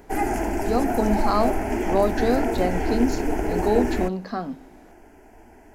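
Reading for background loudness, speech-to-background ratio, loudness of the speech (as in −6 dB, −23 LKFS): −26.0 LKFS, 0.5 dB, −25.5 LKFS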